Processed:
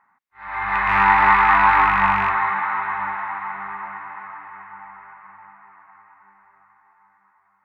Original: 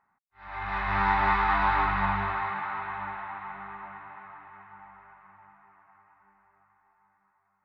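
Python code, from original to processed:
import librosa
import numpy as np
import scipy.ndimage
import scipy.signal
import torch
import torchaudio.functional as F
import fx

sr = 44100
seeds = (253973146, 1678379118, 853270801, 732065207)

y = fx.rattle_buzz(x, sr, strikes_db=-34.0, level_db=-23.0)
y = fx.graphic_eq(y, sr, hz=(250, 1000, 2000), db=(7, 10, 11))
y = y * librosa.db_to_amplitude(-1.0)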